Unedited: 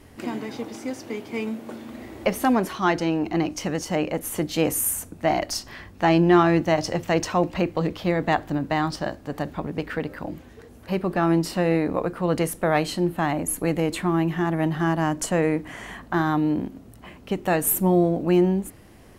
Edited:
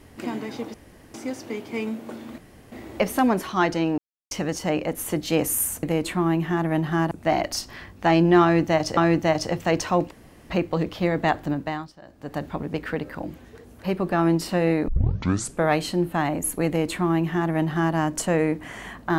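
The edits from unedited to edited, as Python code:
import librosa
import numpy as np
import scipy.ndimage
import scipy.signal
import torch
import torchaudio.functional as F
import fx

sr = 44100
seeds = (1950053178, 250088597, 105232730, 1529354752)

y = fx.edit(x, sr, fx.insert_room_tone(at_s=0.74, length_s=0.4),
    fx.insert_room_tone(at_s=1.98, length_s=0.34),
    fx.silence(start_s=3.24, length_s=0.33),
    fx.repeat(start_s=6.4, length_s=0.55, count=2),
    fx.insert_room_tone(at_s=7.54, length_s=0.39),
    fx.fade_down_up(start_s=8.55, length_s=0.92, db=-19.5, fade_s=0.4),
    fx.tape_start(start_s=11.92, length_s=0.76),
    fx.duplicate(start_s=13.71, length_s=1.28, to_s=5.09), tone=tone)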